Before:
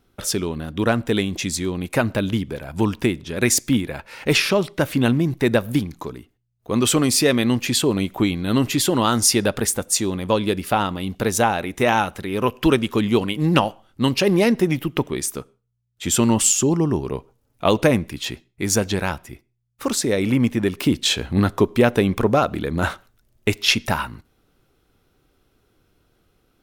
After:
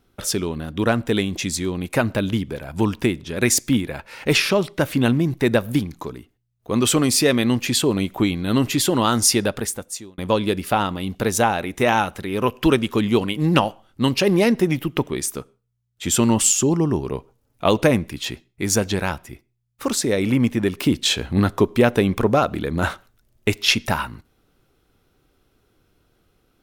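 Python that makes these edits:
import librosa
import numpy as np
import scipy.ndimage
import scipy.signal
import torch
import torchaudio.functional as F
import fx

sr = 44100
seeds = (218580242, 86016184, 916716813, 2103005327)

y = fx.edit(x, sr, fx.fade_out_span(start_s=9.33, length_s=0.85), tone=tone)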